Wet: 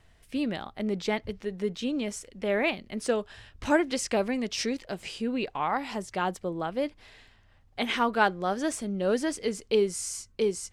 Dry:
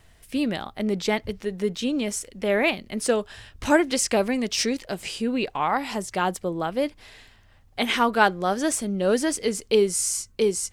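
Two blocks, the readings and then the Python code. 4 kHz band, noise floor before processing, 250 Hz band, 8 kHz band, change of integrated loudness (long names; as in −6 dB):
−6.0 dB, −55 dBFS, −4.5 dB, −9.5 dB, −5.0 dB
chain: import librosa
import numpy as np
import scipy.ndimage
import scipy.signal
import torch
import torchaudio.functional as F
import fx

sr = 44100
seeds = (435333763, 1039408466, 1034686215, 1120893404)

y = fx.high_shelf(x, sr, hz=8700.0, db=-11.5)
y = F.gain(torch.from_numpy(y), -4.5).numpy()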